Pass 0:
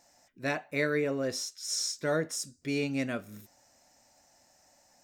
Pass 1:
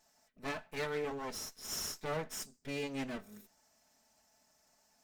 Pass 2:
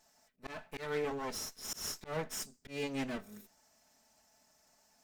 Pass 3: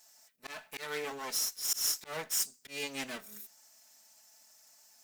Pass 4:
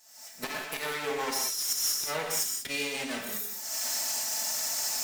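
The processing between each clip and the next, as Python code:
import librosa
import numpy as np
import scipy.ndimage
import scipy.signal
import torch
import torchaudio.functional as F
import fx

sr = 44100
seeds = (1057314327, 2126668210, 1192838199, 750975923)

y1 = fx.lower_of_two(x, sr, delay_ms=4.6)
y1 = F.gain(torch.from_numpy(y1), -5.5).numpy()
y2 = fx.auto_swell(y1, sr, attack_ms=149.0)
y2 = F.gain(torch.from_numpy(y2), 2.0).numpy()
y3 = fx.tilt_eq(y2, sr, slope=3.5)
y4 = fx.recorder_agc(y3, sr, target_db=-24.5, rise_db_per_s=58.0, max_gain_db=30)
y4 = fx.rev_gated(y4, sr, seeds[0], gate_ms=220, shape='flat', drr_db=0.5)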